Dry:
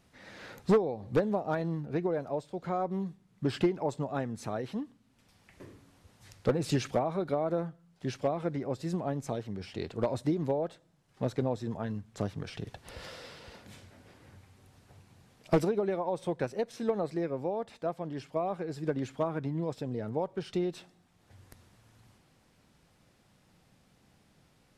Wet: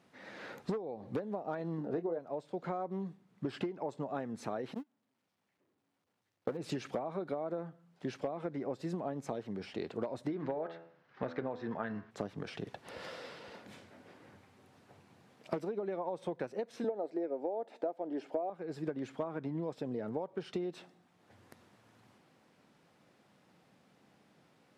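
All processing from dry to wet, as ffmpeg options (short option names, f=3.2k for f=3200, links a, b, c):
-filter_complex "[0:a]asettb=1/sr,asplit=3[a][b][c];[a]atrim=end=1.784[d];[b]atrim=start=1.78:end=2.19,asetpts=PTS-STARTPTS,afade=t=in:d=0.004:c=qsin,afade=t=out:st=0.406:d=0.004:c=qsin,equalizer=f=520:t=o:w=1.8:g=7,bandreject=f=2.3k:w=6.1,asplit=2[e][f];[f]adelay=24,volume=-9dB[g];[e][g]amix=inputs=2:normalize=0,atrim=end_sample=18081[h];[c]atrim=start=2.186[i];[d][h]acrossfade=d=0.004:c1=hsin:c2=qsin[j];[j][i]acrossfade=d=0.004:c1=qsin:c2=hsin,asettb=1/sr,asplit=3[k][l][m];[k]atrim=end=4.744[n];[l]atrim=start=4.74:end=6.57,asetpts=PTS-STARTPTS,afade=t=in:d=0.004:c=qsin,afade=t=out:st=1.826:d=0.004:c=qsin,aeval=exprs='val(0)+0.5*0.0106*sgn(val(0))':c=same,agate=range=-36dB:threshold=-31dB:ratio=16:release=100:detection=peak[o];[m]atrim=start=6.566[p];[n][o]acrossfade=d=0.004:c1=hsin:c2=qsin[q];[q][p]acrossfade=d=0.004:c1=qsin:c2=hsin,asettb=1/sr,asplit=3[r][s][t];[r]atrim=end=10.284[u];[s]atrim=start=10.28:end=12.11,asetpts=PTS-STARTPTS,afade=t=in:d=0.004:c=qsin,afade=t=out:st=1.826:d=0.004:c=qsin,lowpass=f=5.3k:w=0.5412,lowpass=f=5.3k:w=1.3066,equalizer=f=1.6k:t=o:w=1.3:g=11,bandreject=f=83.45:t=h:w=4,bandreject=f=166.9:t=h:w=4,bandreject=f=250.35:t=h:w=4,bandreject=f=333.8:t=h:w=4,bandreject=f=417.25:t=h:w=4,bandreject=f=500.7:t=h:w=4,bandreject=f=584.15:t=h:w=4,bandreject=f=667.6:t=h:w=4,bandreject=f=751.05:t=h:w=4,bandreject=f=834.5:t=h:w=4,bandreject=f=917.95:t=h:w=4,bandreject=f=1.0014k:t=h:w=4,bandreject=f=1.08485k:t=h:w=4,bandreject=f=1.1683k:t=h:w=4,bandreject=f=1.25175k:t=h:w=4,bandreject=f=1.3352k:t=h:w=4,bandreject=f=1.41865k:t=h:w=4,bandreject=f=1.5021k:t=h:w=4,bandreject=f=1.58555k:t=h:w=4,bandreject=f=1.669k:t=h:w=4,bandreject=f=1.75245k:t=h:w=4,bandreject=f=1.8359k:t=h:w=4,bandreject=f=1.91935k:t=h:w=4,bandreject=f=2.0028k:t=h:w=4,bandreject=f=2.08625k:t=h:w=4,bandreject=f=2.1697k:t=h:w=4,bandreject=f=2.25315k:t=h:w=4,bandreject=f=2.3366k:t=h:w=4,bandreject=f=2.42005k:t=h:w=4,bandreject=f=2.5035k:t=h:w=4,bandreject=f=2.58695k:t=h:w=4,bandreject=f=2.6704k:t=h:w=4,bandreject=f=2.75385k:t=h:w=4,bandreject=f=2.8373k:t=h:w=4[v];[t]atrim=start=12.106[w];[u][v]acrossfade=d=0.004:c1=hsin:c2=qsin[x];[x][w]acrossfade=d=0.004:c1=qsin:c2=hsin,asettb=1/sr,asplit=3[y][z][aa];[y]atrim=end=16.844[ab];[z]atrim=start=16.84:end=18.5,asetpts=PTS-STARTPTS,afade=t=in:d=0.004:c=qsin,afade=t=out:st=1.656:d=0.004:c=qsin,highpass=f=300:t=q:w=2.1,equalizer=f=680:t=o:w=1.3:g=9.5,bandreject=f=1.1k:w=5.8[ac];[aa]atrim=start=18.496[ad];[ab][ac]acrossfade=d=0.004:c1=hsin:c2=qsin[ae];[ae][ad]acrossfade=d=0.004:c1=qsin:c2=hsin,highpass=200,highshelf=f=3.9k:g=-10.5,acompressor=threshold=-35dB:ratio=10,volume=2dB"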